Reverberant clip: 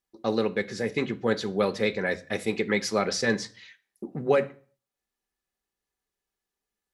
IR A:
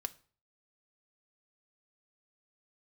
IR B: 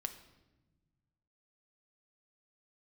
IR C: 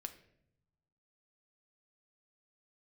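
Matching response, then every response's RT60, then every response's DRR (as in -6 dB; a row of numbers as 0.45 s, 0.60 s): A; 0.45 s, no single decay rate, 0.75 s; 7.5 dB, 7.0 dB, 6.5 dB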